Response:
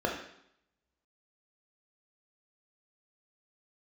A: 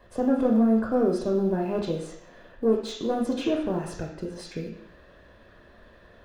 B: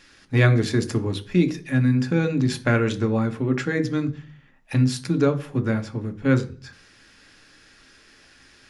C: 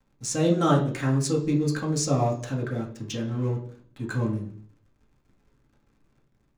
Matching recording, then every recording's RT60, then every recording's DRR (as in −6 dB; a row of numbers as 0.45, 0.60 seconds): A; 0.70, 0.40, 0.55 seconds; −0.5, 7.0, −2.0 decibels